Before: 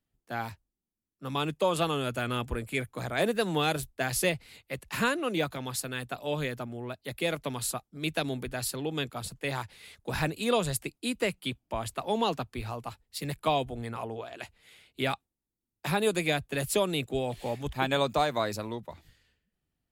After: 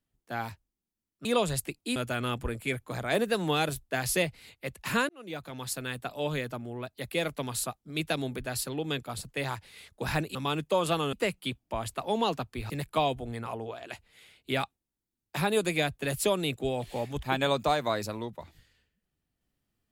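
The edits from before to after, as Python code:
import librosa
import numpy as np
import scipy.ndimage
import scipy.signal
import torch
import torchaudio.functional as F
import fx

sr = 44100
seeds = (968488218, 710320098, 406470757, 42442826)

y = fx.edit(x, sr, fx.swap(start_s=1.25, length_s=0.78, other_s=10.42, other_length_s=0.71),
    fx.fade_in_span(start_s=5.16, length_s=0.71),
    fx.cut(start_s=12.7, length_s=0.5), tone=tone)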